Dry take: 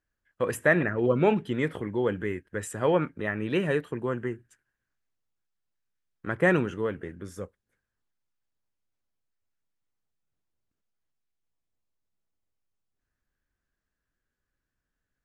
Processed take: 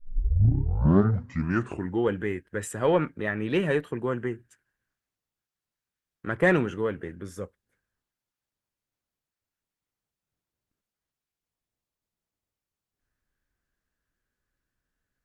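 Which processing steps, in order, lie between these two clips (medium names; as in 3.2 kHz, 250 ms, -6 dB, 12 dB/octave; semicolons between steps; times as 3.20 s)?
tape start-up on the opening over 2.11 s; Chebyshev shaper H 2 -17 dB, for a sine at -9.5 dBFS; loudspeaker Doppler distortion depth 0.13 ms; trim +1.5 dB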